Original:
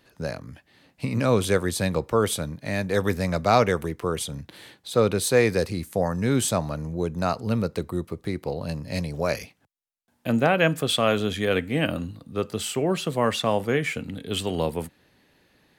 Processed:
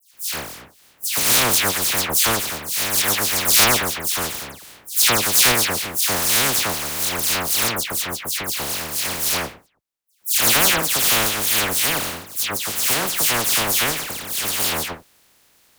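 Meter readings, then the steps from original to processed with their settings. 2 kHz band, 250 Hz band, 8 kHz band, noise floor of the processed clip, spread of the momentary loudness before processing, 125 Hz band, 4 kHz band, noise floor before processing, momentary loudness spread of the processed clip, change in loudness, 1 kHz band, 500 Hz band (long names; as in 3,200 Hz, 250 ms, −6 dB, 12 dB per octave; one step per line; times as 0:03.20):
+8.0 dB, −5.5 dB, +16.5 dB, −58 dBFS, 12 LU, −6.0 dB, +12.5 dB, −66 dBFS, 11 LU, +7.5 dB, +3.5 dB, −5.5 dB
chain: compressing power law on the bin magnitudes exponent 0.12
all-pass dispersion lows, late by 138 ms, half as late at 2,800 Hz
level +5 dB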